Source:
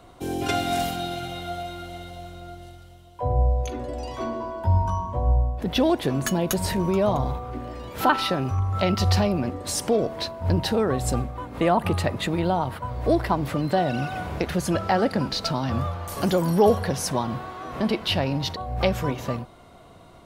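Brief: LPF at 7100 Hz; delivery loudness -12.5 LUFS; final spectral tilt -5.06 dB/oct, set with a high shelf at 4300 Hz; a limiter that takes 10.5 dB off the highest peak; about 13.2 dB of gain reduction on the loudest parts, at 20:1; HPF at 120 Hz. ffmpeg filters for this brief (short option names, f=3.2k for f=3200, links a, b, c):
-af "highpass=120,lowpass=7.1k,highshelf=f=4.3k:g=-9,acompressor=threshold=-26dB:ratio=20,volume=21.5dB,alimiter=limit=-2dB:level=0:latency=1"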